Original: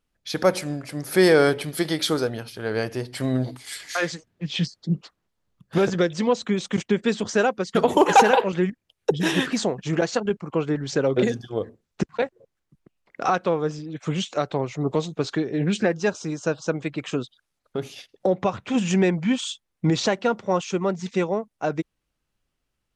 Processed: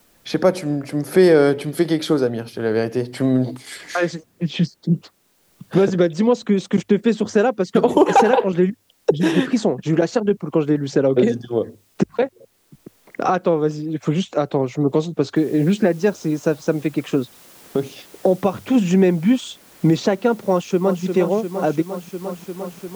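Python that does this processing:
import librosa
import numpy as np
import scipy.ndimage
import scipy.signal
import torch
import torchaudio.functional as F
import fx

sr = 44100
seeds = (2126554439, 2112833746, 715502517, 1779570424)

y = fx.noise_floor_step(x, sr, seeds[0], at_s=15.36, before_db=-67, after_db=-49, tilt_db=0.0)
y = fx.echo_throw(y, sr, start_s=20.5, length_s=0.53, ms=350, feedback_pct=75, wet_db=-8.5)
y = fx.peak_eq(y, sr, hz=290.0, db=9.0, octaves=2.8)
y = fx.hum_notches(y, sr, base_hz=50, count=2)
y = fx.band_squash(y, sr, depth_pct=40)
y = F.gain(torch.from_numpy(y), -2.0).numpy()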